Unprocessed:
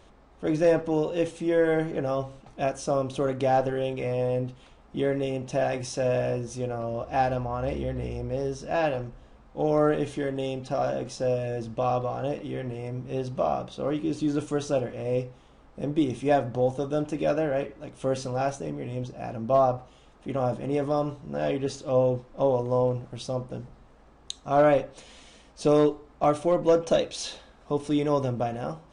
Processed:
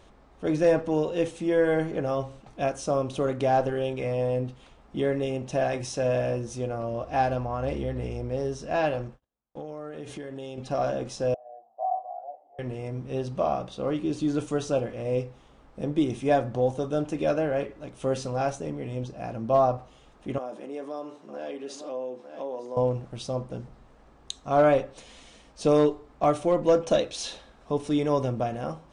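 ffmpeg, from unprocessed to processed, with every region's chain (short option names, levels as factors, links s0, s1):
-filter_complex "[0:a]asettb=1/sr,asplit=3[s0][s1][s2];[s0]atrim=end=9.084[s3];[s1]atrim=start=9.08:end=10.58,asetpts=PTS-STARTPTS,afade=t=in:d=0.004:c=qsin,afade=t=out:st=1.496:d=0.004:c=qsin,highpass=f=85:p=1,agate=range=0.0158:threshold=0.00316:ratio=16:release=100:detection=peak,acompressor=threshold=0.0224:ratio=20:attack=3.2:release=140:knee=1:detection=peak[s4];[s2]atrim=start=10.576[s5];[s3][s4]acrossfade=d=0.004:c1=hsin:c2=qsin[s6];[s6][s5]acrossfade=d=0.004:c1=qsin:c2=hsin,asettb=1/sr,asplit=3[s7][s8][s9];[s7]atrim=end=11.344[s10];[s8]atrim=start=11.34:end=12.59,asetpts=PTS-STARTPTS,afade=t=in:d=0.004:c=qsin,afade=t=out:st=1.246:d=0.004:c=qsin,asuperpass=centerf=730:order=4:qfactor=5.4,asplit=2[s11][s12];[s12]adelay=17,volume=0.631[s13];[s11][s13]amix=inputs=2:normalize=0,atrim=end_sample=55125[s14];[s9]atrim=start=12.586[s15];[s10][s14]acrossfade=d=0.004:c1=hsin:c2=qsin[s16];[s16][s15]acrossfade=d=0.004:c1=qsin:c2=hsin,asettb=1/sr,asplit=3[s17][s18][s19];[s17]atrim=end=20.384[s20];[s18]atrim=start=20.38:end=22.77,asetpts=PTS-STARTPTS,afade=t=in:d=0.004:c=qsin,afade=t=out:st=2.386:d=0.004:c=qsin,aecho=1:1:904:0.158,atrim=end_sample=105399,acompressor=threshold=0.0178:ratio=2.5:attack=3.2:release=140:knee=1:detection=peak,highpass=f=250:w=0.5412,highpass=f=250:w=1.3066[s21];[s19]atrim=start=22.766[s22];[s20][s21]acrossfade=d=0.004:c1=hsin:c2=qsin[s23];[s23][s22]acrossfade=d=0.004:c1=qsin:c2=hsin"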